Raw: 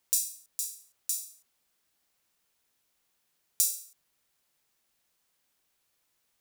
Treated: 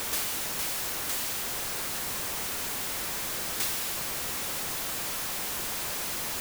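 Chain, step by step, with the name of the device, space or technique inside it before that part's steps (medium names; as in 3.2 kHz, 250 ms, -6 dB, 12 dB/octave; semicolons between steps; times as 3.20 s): early CD player with a faulty converter (jump at every zero crossing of -16 dBFS; sampling jitter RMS 0.082 ms); trim -9 dB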